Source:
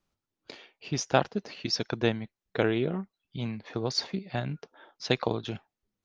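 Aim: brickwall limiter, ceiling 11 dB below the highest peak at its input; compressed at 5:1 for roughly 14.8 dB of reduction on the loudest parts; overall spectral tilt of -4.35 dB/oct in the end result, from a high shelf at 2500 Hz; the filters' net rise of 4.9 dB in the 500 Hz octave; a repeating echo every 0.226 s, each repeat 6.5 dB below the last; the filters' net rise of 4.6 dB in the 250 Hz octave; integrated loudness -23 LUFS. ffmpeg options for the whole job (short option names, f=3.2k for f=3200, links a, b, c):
-af "equalizer=f=250:t=o:g=4.5,equalizer=f=500:t=o:g=4.5,highshelf=f=2.5k:g=5.5,acompressor=threshold=-32dB:ratio=5,alimiter=level_in=1.5dB:limit=-24dB:level=0:latency=1,volume=-1.5dB,aecho=1:1:226|452|678|904|1130|1356:0.473|0.222|0.105|0.0491|0.0231|0.0109,volume=16dB"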